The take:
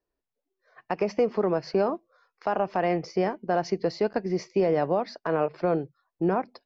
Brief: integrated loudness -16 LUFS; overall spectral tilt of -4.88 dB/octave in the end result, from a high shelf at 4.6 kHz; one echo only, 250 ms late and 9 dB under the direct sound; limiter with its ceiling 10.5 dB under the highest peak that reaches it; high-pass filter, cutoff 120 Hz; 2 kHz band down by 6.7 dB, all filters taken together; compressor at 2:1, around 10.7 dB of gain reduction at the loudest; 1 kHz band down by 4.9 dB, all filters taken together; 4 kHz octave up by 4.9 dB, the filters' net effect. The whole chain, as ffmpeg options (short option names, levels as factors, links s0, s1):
-af "highpass=120,equalizer=f=1000:t=o:g=-6.5,equalizer=f=2000:t=o:g=-8.5,equalizer=f=4000:t=o:g=4,highshelf=f=4600:g=7,acompressor=threshold=0.00891:ratio=2,alimiter=level_in=2.99:limit=0.0631:level=0:latency=1,volume=0.335,aecho=1:1:250:0.355,volume=23.7"